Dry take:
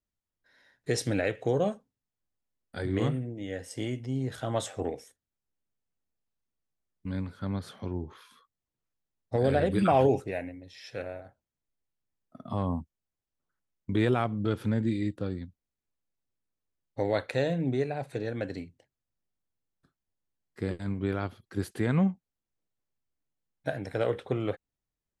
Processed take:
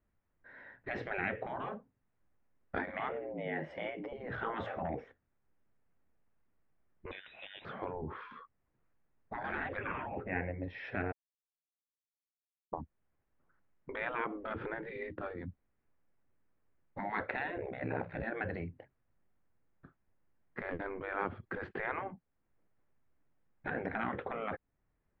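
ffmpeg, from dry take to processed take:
ffmpeg -i in.wav -filter_complex "[0:a]asettb=1/sr,asplit=3[link_01][link_02][link_03];[link_01]atrim=end=2.784[link_04];[link_02]atrim=start=2.78:end=4.13,asetpts=PTS-STARTPTS,afade=type=in:duration=0.004:curve=qsin,afade=type=out:start_time=1.346:duration=0.004:curve=qsin,afreqshift=67[link_05];[link_03]atrim=start=4.126[link_06];[link_04][link_05]acrossfade=duration=0.004:curve1=hsin:curve2=qsin[link_07];[link_07][link_06]acrossfade=duration=0.004:curve1=qsin:curve2=hsin,asettb=1/sr,asplit=3[link_08][link_09][link_10];[link_08]atrim=end=7.114[link_11];[link_09]atrim=start=7.11:end=7.65,asetpts=PTS-STARTPTS,afade=type=in:duration=0.004:curve=qsin,afade=type=out:start_time=0.536:duration=0.004:curve=qsin,lowpass=frequency=3400:width_type=q:width=0.5098,lowpass=frequency=3400:width_type=q:width=0.6013,lowpass=frequency=3400:width_type=q:width=0.9,lowpass=frequency=3400:width_type=q:width=2.563,afreqshift=-4000[link_12];[link_10]atrim=start=7.646[link_13];[link_11][link_12]acrossfade=duration=0.004:curve1=hsin:curve2=qsin[link_14];[link_14][link_13]acrossfade=duration=0.004:curve1=qsin:curve2=hsin,asettb=1/sr,asplit=3[link_15][link_16][link_17];[link_15]atrim=end=9.774[link_18];[link_16]atrim=start=9.77:end=10.59,asetpts=PTS-STARTPTS,afade=type=in:duration=0.004:curve=qsin,afade=type=out:start_time=0.816:duration=0.004:curve=qsin,lowpass=frequency=2800:width=0.5412,lowpass=frequency=2800:width=1.3066[link_19];[link_17]atrim=start=10.586[link_20];[link_18][link_19]acrossfade=duration=0.004:curve1=hsin:curve2=qsin[link_21];[link_21][link_20]acrossfade=duration=0.004:curve1=qsin:curve2=hsin,asettb=1/sr,asplit=3[link_22][link_23][link_24];[link_22]atrim=end=17.574[link_25];[link_23]atrim=start=17.57:end=18.23,asetpts=PTS-STARTPTS,afade=type=in:duration=0.004:curve=qsin,afade=type=out:start_time=0.656:duration=0.004:curve=qsin,aeval=exprs='val(0)*sin(2*PI*32*n/s)':channel_layout=same[link_26];[link_24]atrim=start=18.226[link_27];[link_25][link_26]acrossfade=duration=0.004:curve1=hsin:curve2=qsin[link_28];[link_28][link_27]acrossfade=duration=0.004:curve1=qsin:curve2=hsin,asplit=3[link_29][link_30][link_31];[link_29]atrim=end=11.12,asetpts=PTS-STARTPTS,afade=type=out:start_time=11.116:duration=0.004:curve=hsin[link_32];[link_30]atrim=start=11.12:end=12.73,asetpts=PTS-STARTPTS,volume=0[link_33];[link_31]atrim=start=12.73,asetpts=PTS-STARTPTS,afade=type=in:duration=0.004:curve=hsin[link_34];[link_32][link_33][link_34]concat=n=3:v=0:a=1,acompressor=threshold=-45dB:ratio=1.5,afftfilt=real='re*lt(hypot(re,im),0.0355)':imag='im*lt(hypot(re,im),0.0355)':win_size=1024:overlap=0.75,lowpass=frequency=2100:width=0.5412,lowpass=frequency=2100:width=1.3066,volume=11.5dB" out.wav

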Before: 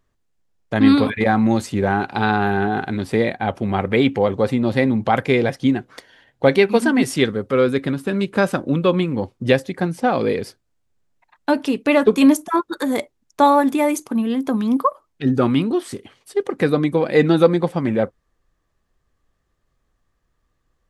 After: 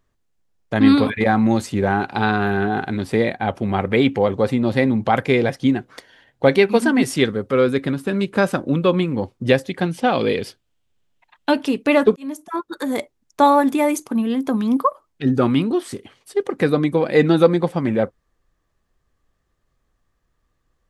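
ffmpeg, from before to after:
ffmpeg -i in.wav -filter_complex "[0:a]asettb=1/sr,asplit=3[link_01][link_02][link_03];[link_01]atrim=end=2.294[link_04];[link_02]atrim=start=2.29:end=2.7,asetpts=PTS-STARTPTS,afade=type=in:duration=0.004:curve=qsin,afade=type=out:start_time=0.406:duration=0.004:curve=qsin,bandreject=frequency=840:width=6.3[link_05];[link_03]atrim=start=2.696[link_06];[link_04][link_05]acrossfade=duration=0.004:curve1=hsin:curve2=qsin[link_07];[link_07][link_06]acrossfade=duration=0.004:curve1=qsin:curve2=hsin,asettb=1/sr,asplit=3[link_08][link_09][link_10];[link_08]atrim=end=9.694[link_11];[link_09]atrim=start=9.69:end=11.64,asetpts=PTS-STARTPTS,afade=type=in:duration=0.004:curve=qsin,afade=type=out:start_time=1.946:duration=0.004:curve=qsin,equalizer=frequency=3100:width=2.1:gain=10[link_12];[link_10]atrim=start=11.636[link_13];[link_11][link_12]acrossfade=duration=0.004:curve1=hsin:curve2=qsin[link_14];[link_14][link_13]acrossfade=duration=0.004:curve1=qsin:curve2=hsin,asplit=2[link_15][link_16];[link_15]atrim=end=12.16,asetpts=PTS-STARTPTS,afade=type=out:start_time=12.156:duration=0.004:curve=hsin[link_17];[link_16]atrim=start=12.16,asetpts=PTS-STARTPTS,afade=type=in:duration=1.3:curve=qsin[link_18];[link_17][link_18]concat=n=2:v=0:a=1" out.wav

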